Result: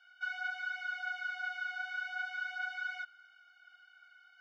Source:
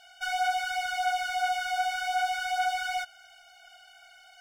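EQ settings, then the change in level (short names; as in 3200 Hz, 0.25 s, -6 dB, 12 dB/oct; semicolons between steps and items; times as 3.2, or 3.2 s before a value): ladder high-pass 1200 Hz, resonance 75%; air absorption 230 m; high shelf 5500 Hz +8 dB; 0.0 dB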